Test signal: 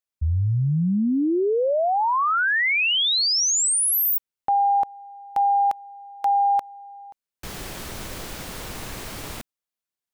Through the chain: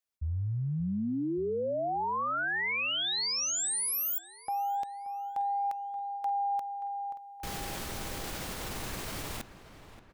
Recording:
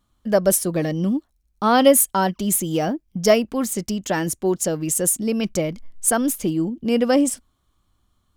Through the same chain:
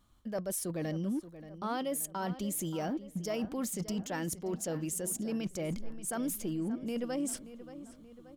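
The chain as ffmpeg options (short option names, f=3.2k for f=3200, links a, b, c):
-filter_complex "[0:a]areverse,acompressor=threshold=-30dB:ratio=8:attack=0.17:release=187:knee=1:detection=peak,areverse,asplit=2[a][b];[b]adelay=579,lowpass=f=3k:p=1,volume=-13.5dB,asplit=2[c][d];[d]adelay=579,lowpass=f=3k:p=1,volume=0.54,asplit=2[e][f];[f]adelay=579,lowpass=f=3k:p=1,volume=0.54,asplit=2[g][h];[h]adelay=579,lowpass=f=3k:p=1,volume=0.54,asplit=2[i][j];[j]adelay=579,lowpass=f=3k:p=1,volume=0.54[k];[a][c][e][g][i][k]amix=inputs=6:normalize=0"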